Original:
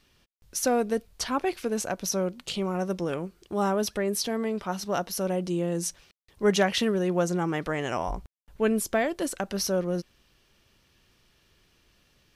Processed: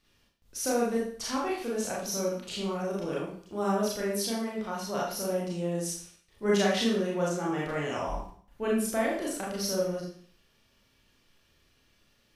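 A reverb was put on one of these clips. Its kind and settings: Schroeder reverb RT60 0.51 s, combs from 27 ms, DRR -5 dB; gain -8.5 dB

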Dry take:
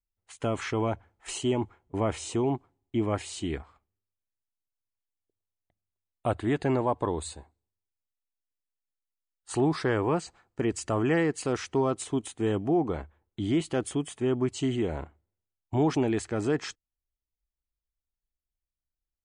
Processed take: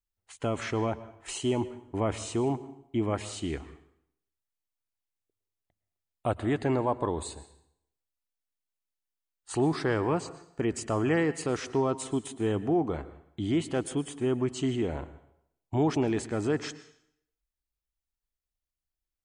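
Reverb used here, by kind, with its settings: plate-style reverb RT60 0.71 s, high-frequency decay 0.9×, pre-delay 0.1 s, DRR 15 dB; gain -1 dB

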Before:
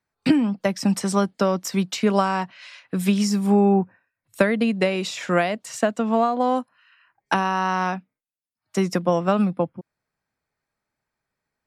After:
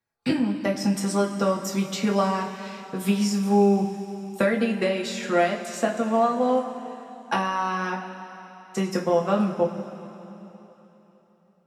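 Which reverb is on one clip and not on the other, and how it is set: two-slope reverb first 0.24 s, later 3.6 s, from -18 dB, DRR -1.5 dB; gain -6 dB

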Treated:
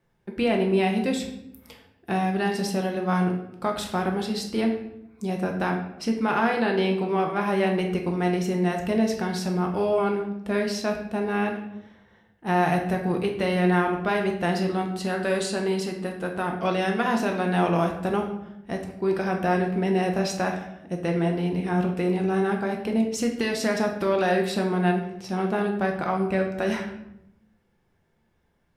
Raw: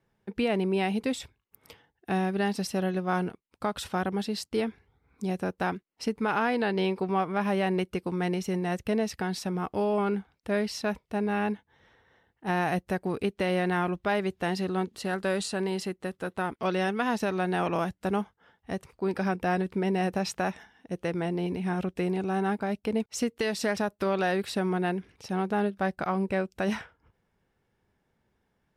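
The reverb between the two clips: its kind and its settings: shoebox room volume 220 m³, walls mixed, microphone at 0.86 m; gain +1.5 dB

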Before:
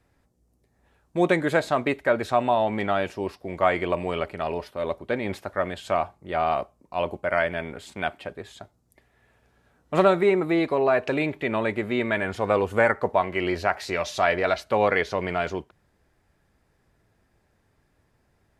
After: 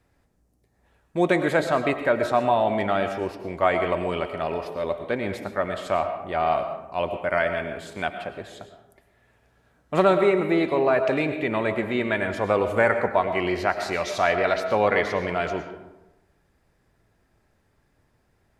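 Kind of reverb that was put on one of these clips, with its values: digital reverb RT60 1 s, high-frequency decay 0.5×, pre-delay 70 ms, DRR 7.5 dB

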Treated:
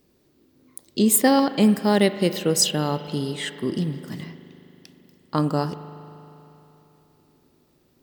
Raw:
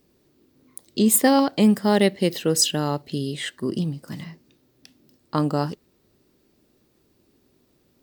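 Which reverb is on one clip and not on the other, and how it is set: spring tank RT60 3.4 s, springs 39 ms, chirp 25 ms, DRR 11 dB

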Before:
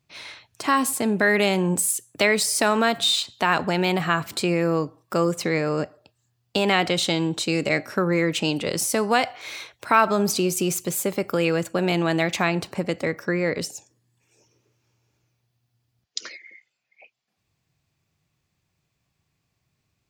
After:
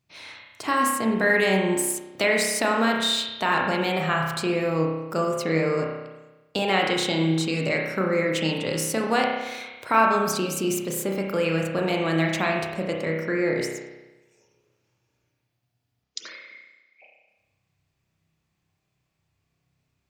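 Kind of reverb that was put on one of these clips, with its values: spring tank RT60 1.1 s, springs 31 ms, chirp 75 ms, DRR -0.5 dB; gain -4 dB

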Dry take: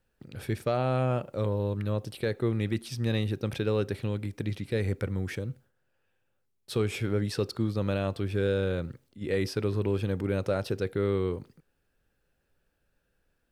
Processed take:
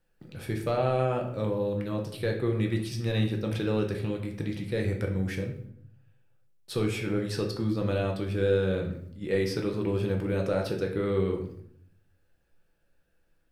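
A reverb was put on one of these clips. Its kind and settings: shoebox room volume 120 m³, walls mixed, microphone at 0.69 m; gain -1.5 dB

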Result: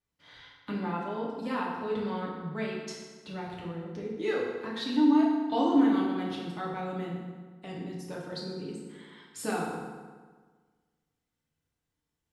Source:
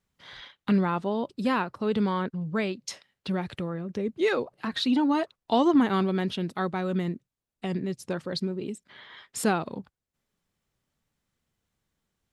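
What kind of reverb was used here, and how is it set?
FDN reverb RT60 1.5 s, low-frequency decay 1.05×, high-frequency decay 0.7×, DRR -4.5 dB; gain -11 dB

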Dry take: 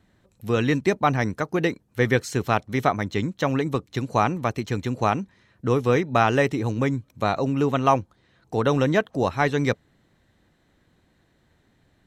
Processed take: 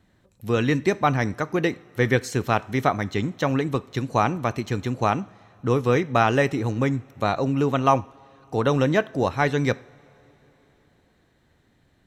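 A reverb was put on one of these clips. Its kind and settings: two-slope reverb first 0.5 s, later 4.2 s, from -18 dB, DRR 16.5 dB

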